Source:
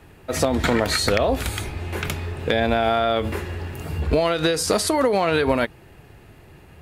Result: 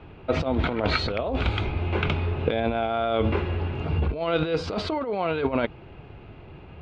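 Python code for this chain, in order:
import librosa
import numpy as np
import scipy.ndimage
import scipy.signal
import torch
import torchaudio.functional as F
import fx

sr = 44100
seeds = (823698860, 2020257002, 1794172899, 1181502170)

y = scipy.signal.sosfilt(scipy.signal.butter(4, 3300.0, 'lowpass', fs=sr, output='sos'), x)
y = fx.peak_eq(y, sr, hz=1800.0, db=-12.5, octaves=0.23)
y = fx.over_compress(y, sr, threshold_db=-23.0, ratio=-0.5)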